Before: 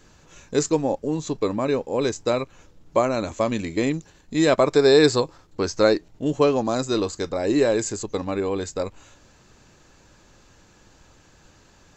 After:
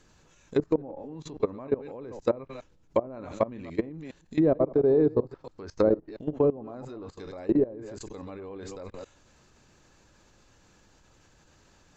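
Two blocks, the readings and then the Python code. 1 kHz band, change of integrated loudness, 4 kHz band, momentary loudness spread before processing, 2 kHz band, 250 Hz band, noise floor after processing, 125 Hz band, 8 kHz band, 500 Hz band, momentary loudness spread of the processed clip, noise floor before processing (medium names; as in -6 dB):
-11.0 dB, -5.0 dB, under -20 dB, 11 LU, -17.5 dB, -5.5 dB, -61 dBFS, -6.0 dB, under -20 dB, -6.0 dB, 19 LU, -55 dBFS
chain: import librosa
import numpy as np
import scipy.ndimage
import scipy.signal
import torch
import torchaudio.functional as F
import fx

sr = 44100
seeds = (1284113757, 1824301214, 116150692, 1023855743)

y = fx.reverse_delay(x, sr, ms=137, wet_db=-10.5)
y = fx.env_lowpass_down(y, sr, base_hz=520.0, full_db=-15.5)
y = fx.level_steps(y, sr, step_db=20)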